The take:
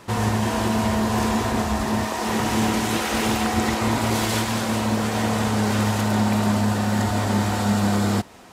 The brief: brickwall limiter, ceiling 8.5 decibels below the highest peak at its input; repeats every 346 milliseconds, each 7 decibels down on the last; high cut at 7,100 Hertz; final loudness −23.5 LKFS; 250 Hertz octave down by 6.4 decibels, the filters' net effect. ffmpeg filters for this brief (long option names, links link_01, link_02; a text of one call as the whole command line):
ffmpeg -i in.wav -af "lowpass=7100,equalizer=frequency=250:width_type=o:gain=-8,alimiter=limit=-20dB:level=0:latency=1,aecho=1:1:346|692|1038|1384|1730:0.447|0.201|0.0905|0.0407|0.0183,volume=4dB" out.wav